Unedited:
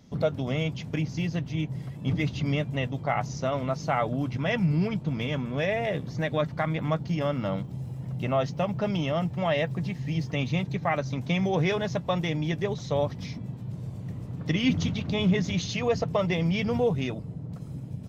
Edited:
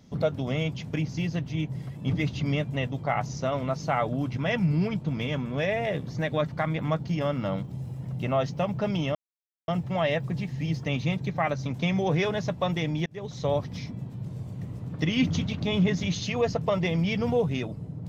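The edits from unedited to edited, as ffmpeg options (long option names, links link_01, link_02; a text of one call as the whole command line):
ffmpeg -i in.wav -filter_complex "[0:a]asplit=3[link_01][link_02][link_03];[link_01]atrim=end=9.15,asetpts=PTS-STARTPTS,afade=type=out:start_time=9.146:duration=0.004:curve=hsin,apad=pad_dur=0.53[link_04];[link_02]atrim=start=9.15:end=12.53,asetpts=PTS-STARTPTS,afade=type=in:duration=0.004:curve=hsin,afade=type=out:start_time=3.376:duration=0.004:curve=hsin[link_05];[link_03]atrim=start=12.53,asetpts=PTS-STARTPTS,afade=type=in:duration=0.36[link_06];[link_04][link_05][link_06]concat=n=3:v=0:a=1" out.wav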